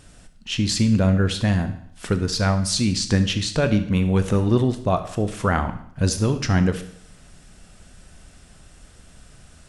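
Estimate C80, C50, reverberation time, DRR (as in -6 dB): 14.0 dB, 11.5 dB, 0.65 s, 8.5 dB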